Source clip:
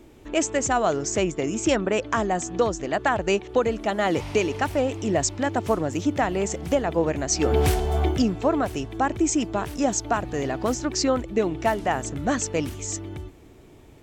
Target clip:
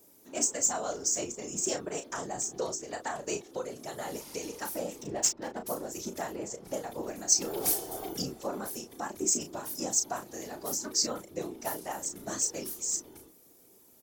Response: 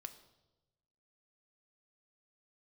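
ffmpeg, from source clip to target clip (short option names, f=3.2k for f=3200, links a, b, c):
-filter_complex "[0:a]highpass=230,highshelf=f=4k:t=q:w=1.5:g=11.5,asettb=1/sr,asplit=3[a][b][c];[a]atrim=end=3.374[d];[b]atrim=start=3.37:end=4.43,asetpts=PTS-STARTPTS,afade=t=in:d=0.004:c=qsin,afade=t=out:st=1.056:d=0.004:c=qsin,acompressor=threshold=-23dB:ratio=2[e];[c]atrim=start=4.426[f];[d][e]acrossfade=d=0.004:c1=hsin:c2=qsin[g];[g][f]acrossfade=d=0.004:c1=qsin:c2=hsin,asettb=1/sr,asplit=3[h][i][j];[h]atrim=end=6.324[k];[i]atrim=start=6.32:end=6.74,asetpts=PTS-STARTPTS,afade=t=in:d=0.004:c=qsin,afade=t=out:st=0.416:d=0.004:c=qsin,aemphasis=mode=reproduction:type=75fm[l];[j]atrim=start=6.736[m];[k][l]acrossfade=d=0.004:c1=hsin:c2=qsin[n];[n][m]acrossfade=d=0.004:c1=qsin:c2=hsin,aexciter=amount=2.2:drive=9.8:freq=9.8k,asettb=1/sr,asplit=3[o][p][q];[o]atrim=end=5.014[r];[p]atrim=start=5.01:end=5.67,asetpts=PTS-STARTPTS,afade=t=in:d=0.004:c=qsin,afade=t=out:st=0.656:d=0.004:c=qsin,adynamicsmooth=sensitivity=3:basefreq=1.1k[s];[q]atrim=start=5.666[t];[r][s]acrossfade=d=0.004:c1=hsin:c2=qsin[u];[u][t]acrossfade=d=0.004:c1=qsin:c2=hsin,afftfilt=real='hypot(re,im)*cos(2*PI*random(0))':imag='hypot(re,im)*sin(2*PI*random(1))':win_size=512:overlap=0.75,asplit=2[v][w];[w]adelay=34,volume=-7.5dB[x];[v][x]amix=inputs=2:normalize=0,volume=-7dB"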